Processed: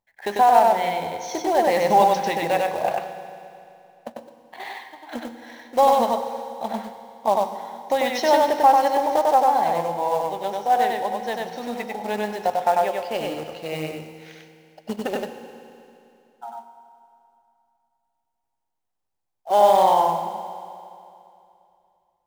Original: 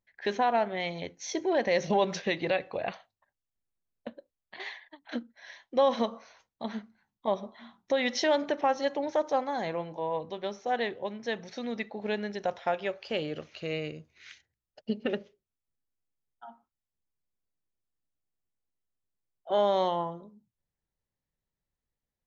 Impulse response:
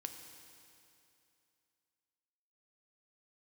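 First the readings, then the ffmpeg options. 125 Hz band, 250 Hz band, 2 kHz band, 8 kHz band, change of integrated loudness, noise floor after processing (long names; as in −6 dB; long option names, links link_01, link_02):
+3.5 dB, +3.5 dB, +4.5 dB, can't be measured, +9.5 dB, −78 dBFS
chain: -filter_complex "[0:a]acrusher=bits=3:mode=log:mix=0:aa=0.000001,equalizer=frequency=820:width_type=o:width=0.75:gain=13.5,asplit=2[link_01][link_02];[1:a]atrim=start_sample=2205,adelay=96[link_03];[link_02][link_03]afir=irnorm=-1:irlink=0,volume=2dB[link_04];[link_01][link_04]amix=inputs=2:normalize=0"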